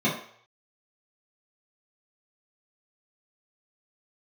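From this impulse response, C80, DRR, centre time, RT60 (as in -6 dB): 10.0 dB, -9.5 dB, 33 ms, 0.60 s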